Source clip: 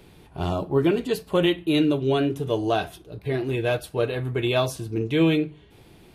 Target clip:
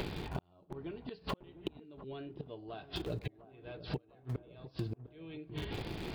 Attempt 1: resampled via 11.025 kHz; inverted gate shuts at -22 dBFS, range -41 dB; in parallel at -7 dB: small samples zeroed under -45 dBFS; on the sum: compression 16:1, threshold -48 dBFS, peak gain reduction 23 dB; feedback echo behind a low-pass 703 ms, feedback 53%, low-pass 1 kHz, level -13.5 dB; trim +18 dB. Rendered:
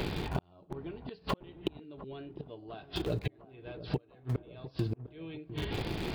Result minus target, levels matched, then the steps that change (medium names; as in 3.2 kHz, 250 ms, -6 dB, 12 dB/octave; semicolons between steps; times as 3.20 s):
compression: peak gain reduction -5.5 dB
change: compression 16:1, threshold -54 dBFS, peak gain reduction 28.5 dB